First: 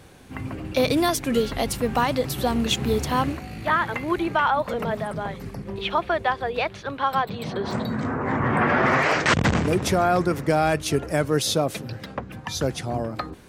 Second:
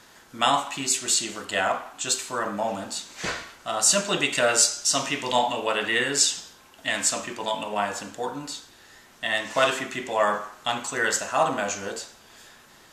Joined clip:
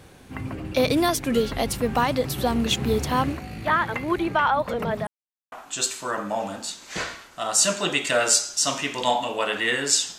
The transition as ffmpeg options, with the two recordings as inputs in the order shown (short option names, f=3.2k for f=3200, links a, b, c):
-filter_complex "[0:a]apad=whole_dur=10.18,atrim=end=10.18,asplit=2[a][b];[a]atrim=end=5.07,asetpts=PTS-STARTPTS,afade=t=out:st=5.066:d=0.004:c=hsin[c];[b]atrim=start=5.07:end=5.52,asetpts=PTS-STARTPTS,volume=0[d];[1:a]atrim=start=1.8:end=6.46,asetpts=PTS-STARTPTS,afade=t=in:d=0.004:c=hsin[e];[c][d][e]concat=n=3:v=0:a=1"